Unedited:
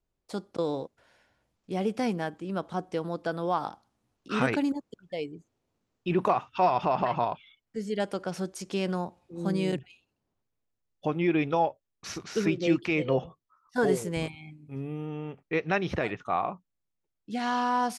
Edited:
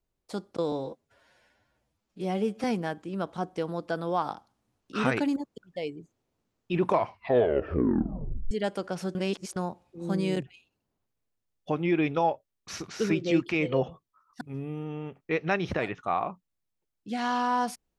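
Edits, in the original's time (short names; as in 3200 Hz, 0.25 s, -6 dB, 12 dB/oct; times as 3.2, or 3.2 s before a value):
0.72–2 stretch 1.5×
6.18 tape stop 1.69 s
8.51–8.92 reverse
13.77–14.63 cut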